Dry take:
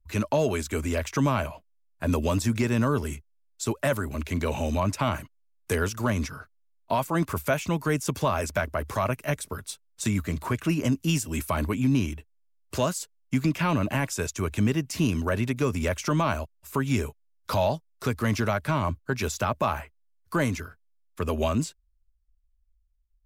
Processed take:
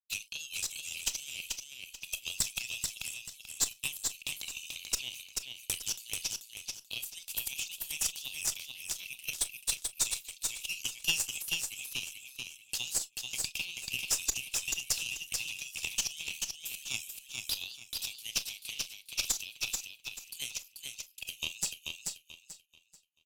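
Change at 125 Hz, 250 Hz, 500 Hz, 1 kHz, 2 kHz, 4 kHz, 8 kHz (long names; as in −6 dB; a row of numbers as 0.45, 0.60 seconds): −29.5, −31.5, −29.5, −25.0, −6.5, +4.5, +5.0 decibels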